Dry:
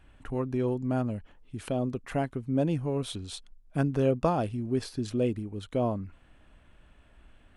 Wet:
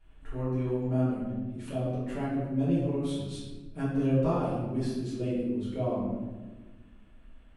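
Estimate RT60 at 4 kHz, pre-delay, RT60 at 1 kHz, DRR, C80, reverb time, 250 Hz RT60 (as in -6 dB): 0.75 s, 5 ms, 1.1 s, -10.5 dB, 3.0 dB, 1.3 s, 2.0 s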